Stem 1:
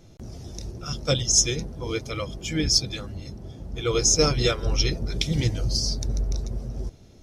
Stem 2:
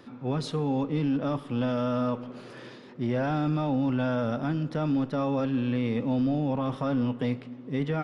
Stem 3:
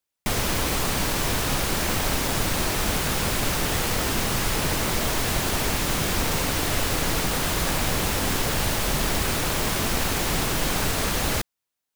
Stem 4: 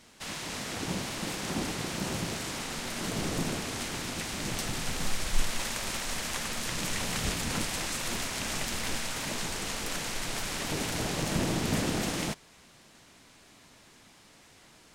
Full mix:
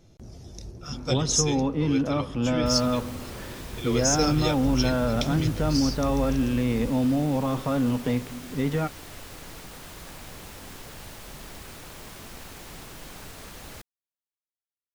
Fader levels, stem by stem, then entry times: −5.0 dB, +2.5 dB, −18.0 dB, muted; 0.00 s, 0.85 s, 2.40 s, muted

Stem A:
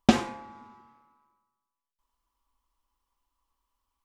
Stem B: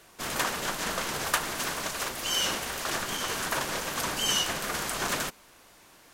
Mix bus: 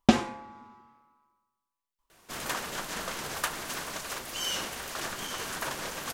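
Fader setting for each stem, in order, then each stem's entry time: −0.5, −4.5 decibels; 0.00, 2.10 seconds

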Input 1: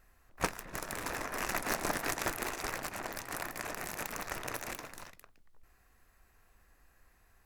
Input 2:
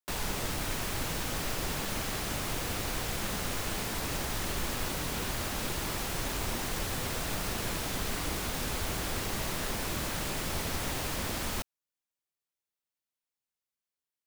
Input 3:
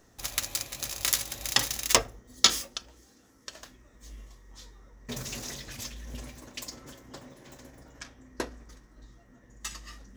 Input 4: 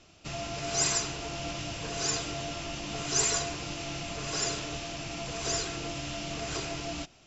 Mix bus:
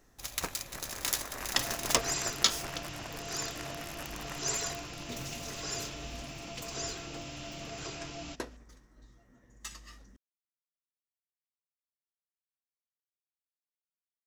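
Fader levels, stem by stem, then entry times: −5.5 dB, muted, −5.5 dB, −6.5 dB; 0.00 s, muted, 0.00 s, 1.30 s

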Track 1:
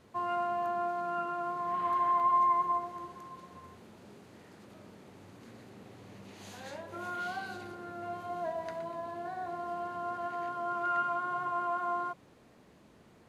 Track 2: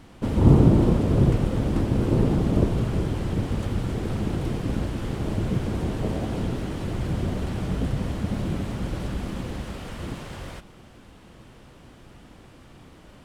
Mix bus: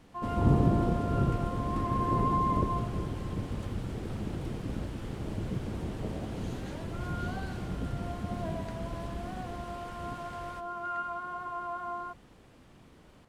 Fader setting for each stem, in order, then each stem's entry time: −4.0, −9.0 decibels; 0.00, 0.00 seconds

